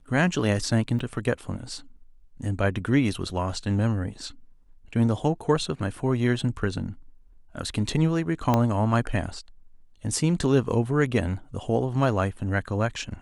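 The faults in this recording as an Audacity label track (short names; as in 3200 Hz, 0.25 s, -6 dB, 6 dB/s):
0.990000	0.990000	gap 3.4 ms
8.540000	8.540000	pop -9 dBFS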